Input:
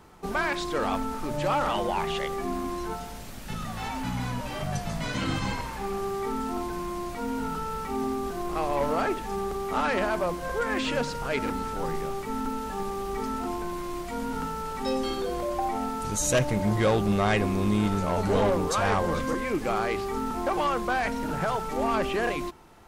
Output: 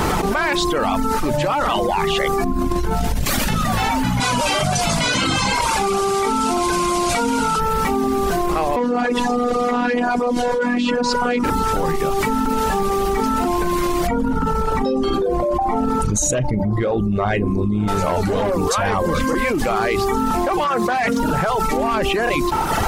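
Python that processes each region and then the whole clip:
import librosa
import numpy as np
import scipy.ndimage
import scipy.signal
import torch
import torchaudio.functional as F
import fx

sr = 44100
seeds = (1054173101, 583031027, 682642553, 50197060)

y = fx.chain(x, sr, fx.low_shelf(hz=220.0, db=11.0),
    fx.over_compress(threshold_db=-32.0, ratio=-1.0), at=(2.44, 3.25))
y = fx.chain(y, sr, fx.lowpass(hz=10000.0, slope=24),
    fx.tilt_eq(slope=2.0),
    fx.notch(hz=1800.0, q=6.5), at=(4.2, 7.6))
y = fx.chain(y, sr, fx.bandpass_edges(low_hz=140.0, high_hz=7000.0),
    fx.low_shelf(hz=470.0, db=10.0),
    fx.robotise(hz=244.0), at=(8.76, 11.44))
y = fx.chain(y, sr, fx.envelope_sharpen(power=1.5),
    fx.doubler(ms=39.0, db=-12.5), at=(14.07, 17.88))
y = fx.chain(y, sr, fx.highpass(hz=110.0, slope=12),
    fx.notch_comb(f0_hz=310.0),
    fx.doppler_dist(depth_ms=0.16), at=(20.64, 21.2))
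y = fx.dereverb_blind(y, sr, rt60_s=0.7)
y = fx.env_flatten(y, sr, amount_pct=100)
y = F.gain(torch.from_numpy(y), 1.0).numpy()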